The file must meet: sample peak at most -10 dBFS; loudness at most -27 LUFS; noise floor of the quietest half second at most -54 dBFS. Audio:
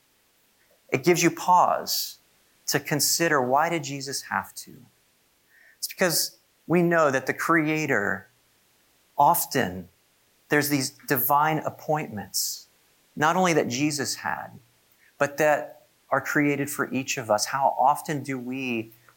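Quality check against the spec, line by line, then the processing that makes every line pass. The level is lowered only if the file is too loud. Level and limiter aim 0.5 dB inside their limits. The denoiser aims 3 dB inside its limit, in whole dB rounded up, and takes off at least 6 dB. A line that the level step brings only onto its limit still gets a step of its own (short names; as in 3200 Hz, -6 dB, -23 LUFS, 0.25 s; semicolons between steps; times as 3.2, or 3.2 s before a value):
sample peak -7.5 dBFS: fail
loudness -24.5 LUFS: fail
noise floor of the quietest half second -65 dBFS: OK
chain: gain -3 dB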